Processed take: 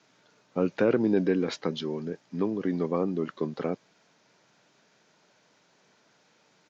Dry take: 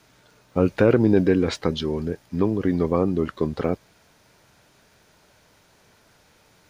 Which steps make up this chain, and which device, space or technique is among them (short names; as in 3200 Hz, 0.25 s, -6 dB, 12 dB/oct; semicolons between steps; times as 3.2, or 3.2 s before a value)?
Bluetooth headset (HPF 150 Hz 24 dB/oct; downsampling 16000 Hz; gain -6 dB; SBC 64 kbps 16000 Hz)